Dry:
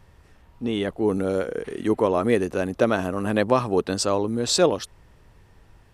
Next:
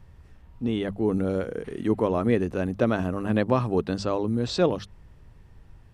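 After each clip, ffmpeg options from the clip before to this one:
-filter_complex "[0:a]bass=f=250:g=9,treble=f=4k:g=-2,bandreject=f=50:t=h:w=6,bandreject=f=100:t=h:w=6,bandreject=f=150:t=h:w=6,bandreject=f=200:t=h:w=6,acrossover=split=5300[a][b];[b]acompressor=threshold=-53dB:ratio=4:attack=1:release=60[c];[a][c]amix=inputs=2:normalize=0,volume=-4.5dB"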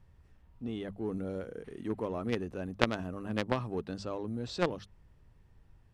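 -filter_complex "[0:a]aeval=exprs='0.447*(cos(1*acos(clip(val(0)/0.447,-1,1)))-cos(1*PI/2))+0.2*(cos(3*acos(clip(val(0)/0.447,-1,1)))-cos(3*PI/2))+0.0631*(cos(5*acos(clip(val(0)/0.447,-1,1)))-cos(5*PI/2))':c=same,asplit=2[a][b];[b]aeval=exprs='sgn(val(0))*max(abs(val(0))-0.0335,0)':c=same,volume=-5dB[c];[a][c]amix=inputs=2:normalize=0,volume=-1.5dB"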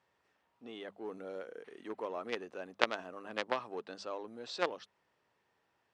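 -af "highpass=520,lowpass=6.7k"

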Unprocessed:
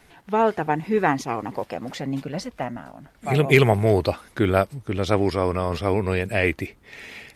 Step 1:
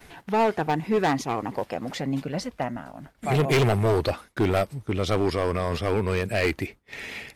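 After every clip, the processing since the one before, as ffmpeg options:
-af "volume=17dB,asoftclip=hard,volume=-17dB,acompressor=mode=upward:threshold=-28dB:ratio=2.5,agate=range=-33dB:threshold=-33dB:ratio=3:detection=peak"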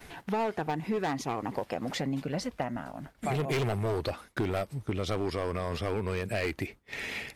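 -af "acompressor=threshold=-28dB:ratio=6"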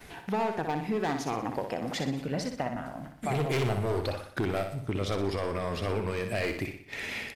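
-af "aecho=1:1:61|122|183|244|305|366:0.447|0.214|0.103|0.0494|0.0237|0.0114"

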